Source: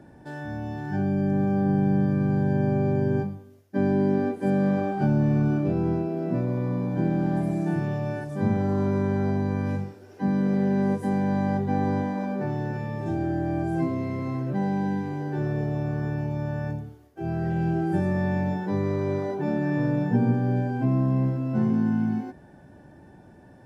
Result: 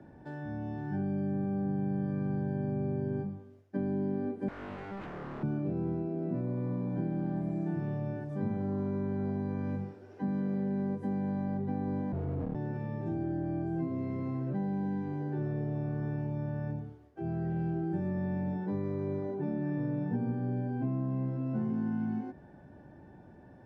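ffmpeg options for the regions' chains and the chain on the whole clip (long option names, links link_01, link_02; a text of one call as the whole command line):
ffmpeg -i in.wav -filter_complex "[0:a]asettb=1/sr,asplit=3[link_01][link_02][link_03];[link_01]atrim=end=4.484[link_04];[link_02]atrim=start=4.48:end=5.43,asetpts=PTS-STARTPTS,afade=type=in:duration=0.004:curve=qsin,afade=type=out:start_time=0.946:duration=0.004:curve=qsin,highpass=56,bandreject=frequency=60:width_type=h:width=6,bandreject=frequency=120:width_type=h:width=6,bandreject=frequency=180:width_type=h:width=6,aeval=exprs='0.0355*(abs(mod(val(0)/0.0355+3,4)-2)-1)':channel_layout=same[link_05];[link_03]atrim=start=5.426[link_06];[link_04][link_05]acrossfade=duration=0.004:curve1=hsin:curve2=qsin[link_07];[link_07][link_06]acrossfade=duration=0.004:curve1=qsin:curve2=hsin,asettb=1/sr,asplit=3[link_08][link_09][link_10];[link_08]atrim=end=12.124[link_11];[link_09]atrim=start=12.12:end=12.55,asetpts=PTS-STARTPTS,afade=type=in:duration=0.004:curve=qsin,afade=type=out:start_time=0.426:duration=0.004:curve=qsin,tiltshelf=frequency=870:gain=9,afreqshift=-110,asoftclip=type=hard:threshold=-22dB[link_12];[link_10]atrim=start=12.546[link_13];[link_11][link_12]acrossfade=duration=0.004:curve1=hsin:curve2=qsin[link_14];[link_14][link_13]acrossfade=duration=0.004:curve1=qsin:curve2=hsin,aemphasis=mode=reproduction:type=75fm,acrossover=split=100|430[link_15][link_16][link_17];[link_15]acompressor=threshold=-50dB:ratio=4[link_18];[link_16]acompressor=threshold=-27dB:ratio=4[link_19];[link_17]acompressor=threshold=-42dB:ratio=4[link_20];[link_18][link_19][link_20]amix=inputs=3:normalize=0,volume=-4dB" out.wav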